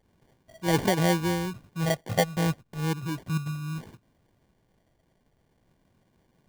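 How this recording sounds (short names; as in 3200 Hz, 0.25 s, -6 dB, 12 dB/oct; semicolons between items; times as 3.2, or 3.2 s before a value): phasing stages 6, 0.35 Hz, lowest notch 330–1300 Hz; aliases and images of a low sample rate 1300 Hz, jitter 0%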